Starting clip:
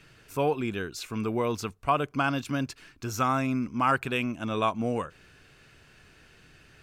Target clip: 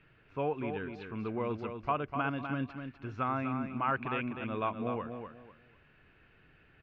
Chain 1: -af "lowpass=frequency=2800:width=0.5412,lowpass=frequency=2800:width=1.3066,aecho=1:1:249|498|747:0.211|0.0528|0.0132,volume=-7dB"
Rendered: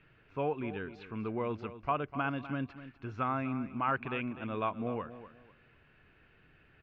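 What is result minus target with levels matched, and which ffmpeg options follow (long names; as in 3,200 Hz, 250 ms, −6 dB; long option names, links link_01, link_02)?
echo-to-direct −6.5 dB
-af "lowpass=frequency=2800:width=0.5412,lowpass=frequency=2800:width=1.3066,aecho=1:1:249|498|747:0.447|0.112|0.0279,volume=-7dB"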